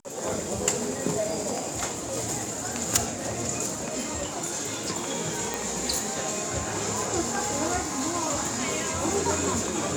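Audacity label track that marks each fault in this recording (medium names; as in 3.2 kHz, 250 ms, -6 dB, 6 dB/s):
5.540000	5.540000	pop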